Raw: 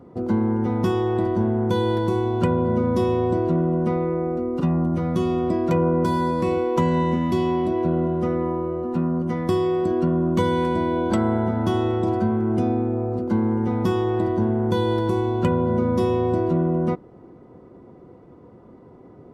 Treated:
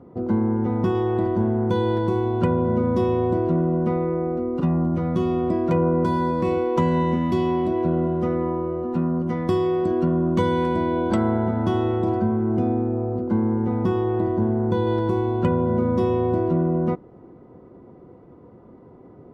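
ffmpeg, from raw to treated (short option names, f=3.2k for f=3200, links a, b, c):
-af "asetnsamples=n=441:p=0,asendcmd='0.95 lowpass f 2700;6.45 lowpass f 4400;11.31 lowpass f 2900;12.2 lowpass f 1400;14.87 lowpass f 2300',lowpass=f=1.7k:p=1"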